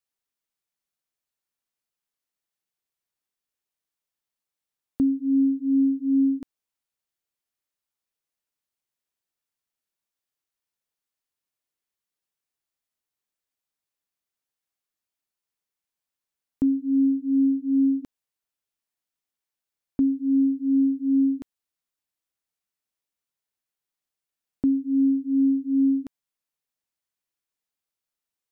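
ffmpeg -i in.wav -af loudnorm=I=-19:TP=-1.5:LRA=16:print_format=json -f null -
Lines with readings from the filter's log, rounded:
"input_i" : "-23.0",
"input_tp" : "-15.3",
"input_lra" : "5.5",
"input_thresh" : "-33.5",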